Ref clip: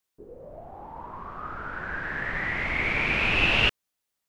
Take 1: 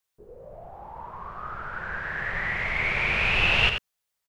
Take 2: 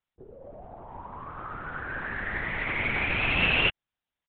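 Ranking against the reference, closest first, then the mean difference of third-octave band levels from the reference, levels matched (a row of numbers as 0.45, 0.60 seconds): 1, 2; 1.5, 3.5 decibels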